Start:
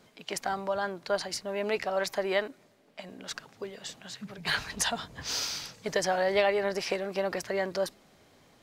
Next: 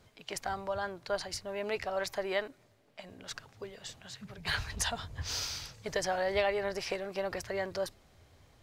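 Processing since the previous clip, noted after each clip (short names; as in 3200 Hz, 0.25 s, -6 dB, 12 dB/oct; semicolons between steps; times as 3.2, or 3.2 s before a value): resonant low shelf 130 Hz +12 dB, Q 1.5; gain -4 dB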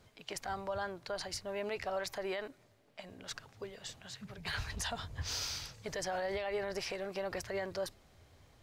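limiter -27 dBFS, peak gain reduction 11 dB; gain -1 dB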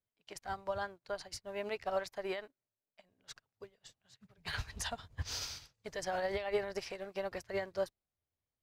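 upward expander 2.5:1, over -58 dBFS; gain +5 dB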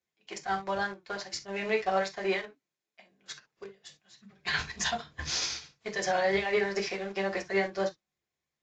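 reverb, pre-delay 3 ms, DRR -1 dB; in parallel at -9 dB: sample gate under -37 dBFS; on the sum: AAC 64 kbps 16000 Hz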